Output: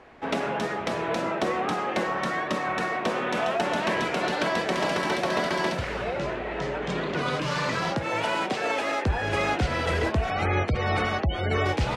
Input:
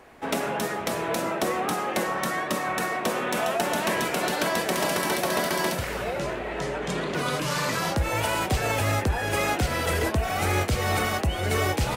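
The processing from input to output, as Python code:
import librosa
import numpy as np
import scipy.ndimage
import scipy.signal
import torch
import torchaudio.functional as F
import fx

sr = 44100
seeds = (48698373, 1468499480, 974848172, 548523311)

y = fx.highpass(x, sr, hz=fx.line((7.9, 110.0), (9.04, 310.0)), slope=24, at=(7.9, 9.04), fade=0.02)
y = fx.spec_gate(y, sr, threshold_db=-25, keep='strong', at=(10.3, 11.66))
y = scipy.signal.sosfilt(scipy.signal.butter(2, 4500.0, 'lowpass', fs=sr, output='sos'), y)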